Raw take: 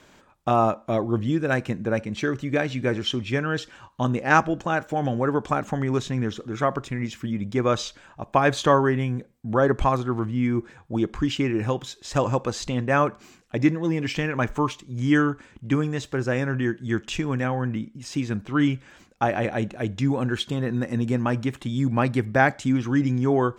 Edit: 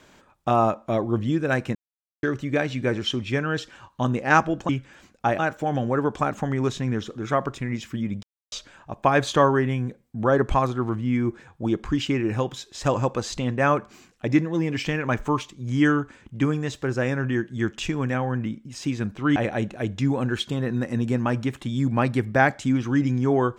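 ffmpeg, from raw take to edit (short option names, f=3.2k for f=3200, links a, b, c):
-filter_complex "[0:a]asplit=8[a][b][c][d][e][f][g][h];[a]atrim=end=1.75,asetpts=PTS-STARTPTS,afade=t=out:st=1.746:d=0.004:c=hsin[i];[b]atrim=start=1.75:end=2.23,asetpts=PTS-STARTPTS,volume=0[j];[c]atrim=start=2.23:end=4.692,asetpts=PTS-STARTPTS,afade=t=in:d=0.004:c=hsin[k];[d]atrim=start=18.658:end=19.362[l];[e]atrim=start=4.688:end=7.53,asetpts=PTS-STARTPTS,afade=t=out:st=2.838:d=0.004:c=hsin[m];[f]atrim=start=7.53:end=7.82,asetpts=PTS-STARTPTS,volume=0[n];[g]atrim=start=7.82:end=18.662,asetpts=PTS-STARTPTS,afade=t=in:d=0.004:c=hsin[o];[h]atrim=start=19.358[p];[i][j][k]concat=n=3:v=0:a=1[q];[q][l]acrossfade=d=0.004:c1=hsin:c2=hsin[r];[m][n][o]concat=n=3:v=0:a=1[s];[r][s]acrossfade=d=0.004:c1=hsin:c2=hsin[t];[t][p]acrossfade=d=0.004:c1=hsin:c2=hsin"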